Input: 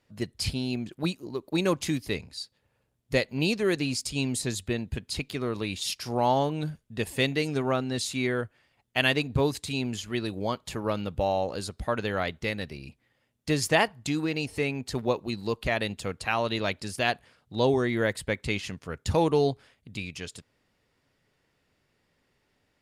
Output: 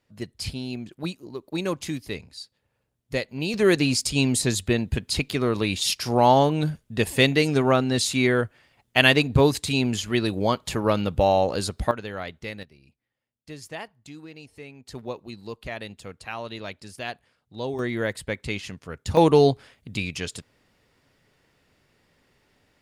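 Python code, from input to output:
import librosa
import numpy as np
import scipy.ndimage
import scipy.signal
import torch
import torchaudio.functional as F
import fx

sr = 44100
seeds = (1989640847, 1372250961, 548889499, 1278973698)

y = fx.gain(x, sr, db=fx.steps((0.0, -2.0), (3.54, 7.0), (11.91, -4.5), (12.63, -14.0), (14.87, -7.0), (17.79, -0.5), (19.17, 7.0)))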